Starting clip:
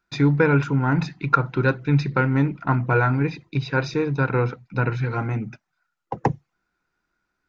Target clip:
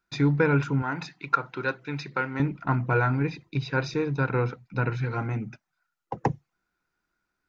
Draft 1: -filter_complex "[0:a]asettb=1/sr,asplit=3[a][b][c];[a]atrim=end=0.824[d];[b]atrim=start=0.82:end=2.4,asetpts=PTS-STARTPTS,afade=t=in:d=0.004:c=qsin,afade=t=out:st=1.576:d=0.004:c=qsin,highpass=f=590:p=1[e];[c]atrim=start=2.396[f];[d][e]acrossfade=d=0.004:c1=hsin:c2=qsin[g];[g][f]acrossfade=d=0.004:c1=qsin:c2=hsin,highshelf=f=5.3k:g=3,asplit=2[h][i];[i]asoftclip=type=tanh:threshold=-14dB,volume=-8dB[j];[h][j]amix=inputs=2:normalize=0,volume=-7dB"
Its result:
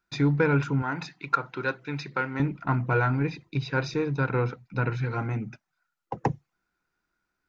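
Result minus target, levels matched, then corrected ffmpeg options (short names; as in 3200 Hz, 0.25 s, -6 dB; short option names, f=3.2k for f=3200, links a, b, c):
soft clip: distortion +17 dB
-filter_complex "[0:a]asettb=1/sr,asplit=3[a][b][c];[a]atrim=end=0.824[d];[b]atrim=start=0.82:end=2.4,asetpts=PTS-STARTPTS,afade=t=in:d=0.004:c=qsin,afade=t=out:st=1.576:d=0.004:c=qsin,highpass=f=590:p=1[e];[c]atrim=start=2.396[f];[d][e]acrossfade=d=0.004:c1=hsin:c2=qsin[g];[g][f]acrossfade=d=0.004:c1=qsin:c2=hsin,highshelf=f=5.3k:g=3,asplit=2[h][i];[i]asoftclip=type=tanh:threshold=-2.5dB,volume=-8dB[j];[h][j]amix=inputs=2:normalize=0,volume=-7dB"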